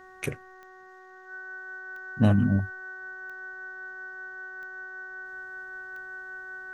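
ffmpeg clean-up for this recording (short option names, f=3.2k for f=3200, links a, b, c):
-af "adeclick=t=4,bandreject=f=373.7:t=h:w=4,bandreject=f=747.4:t=h:w=4,bandreject=f=1.1211k:t=h:w=4,bandreject=f=1.4948k:t=h:w=4,bandreject=f=1.8685k:t=h:w=4,bandreject=f=1.5k:w=30,agate=range=-21dB:threshold=-42dB"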